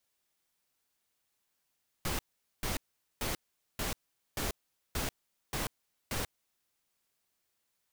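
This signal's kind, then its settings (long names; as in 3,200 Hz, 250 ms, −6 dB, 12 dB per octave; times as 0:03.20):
noise bursts pink, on 0.14 s, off 0.44 s, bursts 8, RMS −34 dBFS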